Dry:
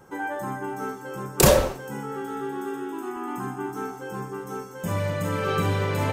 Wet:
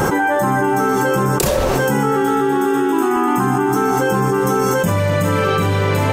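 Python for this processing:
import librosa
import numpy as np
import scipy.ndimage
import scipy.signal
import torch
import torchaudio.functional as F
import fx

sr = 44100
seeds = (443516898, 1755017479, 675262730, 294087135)

y = fx.env_flatten(x, sr, amount_pct=100)
y = y * 10.0 ** (-3.0 / 20.0)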